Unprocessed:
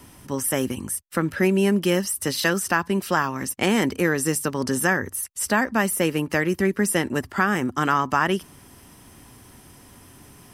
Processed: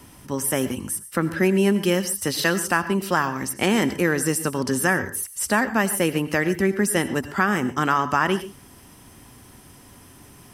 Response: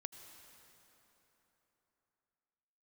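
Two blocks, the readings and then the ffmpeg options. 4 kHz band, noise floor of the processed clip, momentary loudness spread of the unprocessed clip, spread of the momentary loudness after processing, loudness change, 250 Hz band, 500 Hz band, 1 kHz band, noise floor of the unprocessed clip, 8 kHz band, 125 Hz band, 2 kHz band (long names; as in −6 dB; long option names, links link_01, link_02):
+0.5 dB, −48 dBFS, 6 LU, 6 LU, +0.5 dB, +0.5 dB, +0.5 dB, +0.5 dB, −49 dBFS, +0.5 dB, +0.5 dB, +0.5 dB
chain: -filter_complex "[1:a]atrim=start_sample=2205,atrim=end_sample=6615[link_01];[0:a][link_01]afir=irnorm=-1:irlink=0,volume=5dB"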